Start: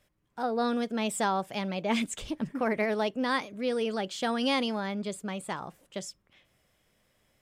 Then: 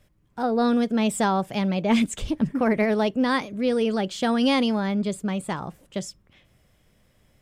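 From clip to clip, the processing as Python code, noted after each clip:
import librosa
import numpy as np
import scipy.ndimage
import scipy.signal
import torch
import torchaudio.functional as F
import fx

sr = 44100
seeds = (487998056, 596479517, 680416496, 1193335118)

y = fx.low_shelf(x, sr, hz=260.0, db=10.5)
y = F.gain(torch.from_numpy(y), 3.5).numpy()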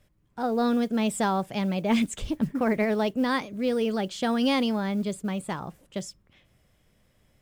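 y = fx.mod_noise(x, sr, seeds[0], snr_db=34)
y = F.gain(torch.from_numpy(y), -3.0).numpy()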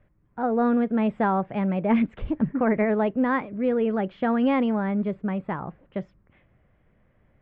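y = scipy.signal.sosfilt(scipy.signal.butter(4, 2100.0, 'lowpass', fs=sr, output='sos'), x)
y = F.gain(torch.from_numpy(y), 2.5).numpy()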